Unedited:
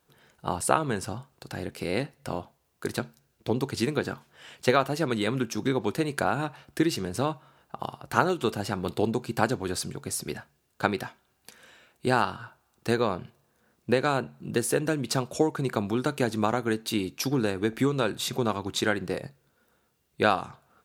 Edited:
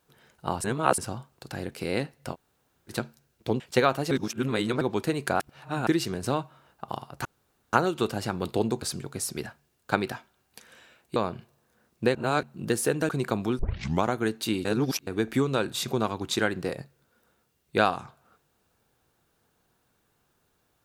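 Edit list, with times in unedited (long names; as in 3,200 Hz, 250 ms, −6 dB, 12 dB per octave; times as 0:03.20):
0:00.64–0:00.98: reverse
0:02.33–0:02.90: fill with room tone, crossfade 0.06 s
0:03.60–0:04.51: remove
0:05.02–0:05.72: reverse
0:06.31–0:06.78: reverse
0:08.16: splice in room tone 0.48 s
0:09.25–0:09.73: remove
0:12.07–0:13.02: remove
0:14.01–0:14.29: reverse
0:14.95–0:15.54: remove
0:16.04: tape start 0.45 s
0:17.10–0:17.52: reverse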